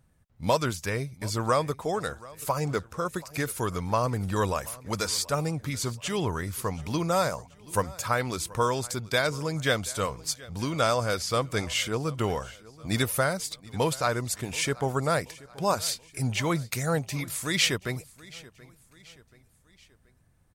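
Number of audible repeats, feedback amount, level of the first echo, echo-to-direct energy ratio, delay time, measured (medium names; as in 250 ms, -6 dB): 3, 46%, -21.0 dB, -20.0 dB, 730 ms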